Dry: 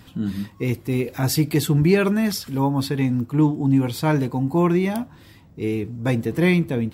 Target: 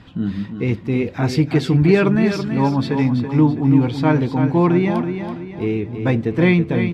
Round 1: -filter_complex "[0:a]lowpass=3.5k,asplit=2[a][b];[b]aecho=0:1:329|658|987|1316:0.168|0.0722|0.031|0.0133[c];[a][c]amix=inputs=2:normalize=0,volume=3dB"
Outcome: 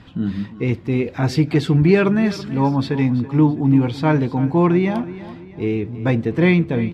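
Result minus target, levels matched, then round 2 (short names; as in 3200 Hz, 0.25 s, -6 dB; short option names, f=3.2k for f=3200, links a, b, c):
echo-to-direct -7.5 dB
-filter_complex "[0:a]lowpass=3.5k,asplit=2[a][b];[b]aecho=0:1:329|658|987|1316|1645:0.398|0.171|0.0736|0.0317|0.0136[c];[a][c]amix=inputs=2:normalize=0,volume=3dB"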